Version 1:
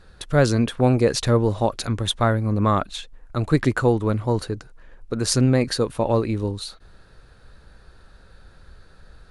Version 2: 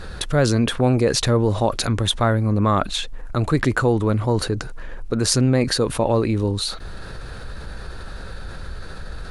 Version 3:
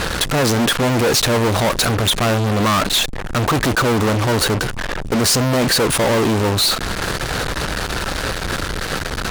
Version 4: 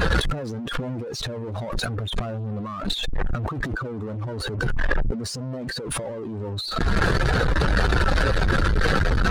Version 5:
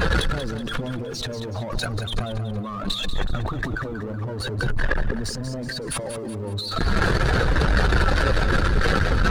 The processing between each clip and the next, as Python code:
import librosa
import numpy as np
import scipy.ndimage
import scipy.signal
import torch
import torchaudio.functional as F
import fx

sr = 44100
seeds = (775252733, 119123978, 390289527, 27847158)

y1 = fx.env_flatten(x, sr, amount_pct=50)
y1 = y1 * librosa.db_to_amplitude(-1.5)
y2 = fx.fuzz(y1, sr, gain_db=39.0, gate_db=-36.0)
y2 = fx.low_shelf(y2, sr, hz=93.0, db=-10.0)
y3 = fx.spec_expand(y2, sr, power=1.8)
y3 = fx.over_compress(y3, sr, threshold_db=-23.0, ratio=-0.5)
y3 = fx.transient(y3, sr, attack_db=-10, sustain_db=2)
y3 = y3 * librosa.db_to_amplitude(1.5)
y4 = fx.quant_dither(y3, sr, seeds[0], bits=12, dither='none')
y4 = fx.echo_feedback(y4, sr, ms=187, feedback_pct=45, wet_db=-9.5)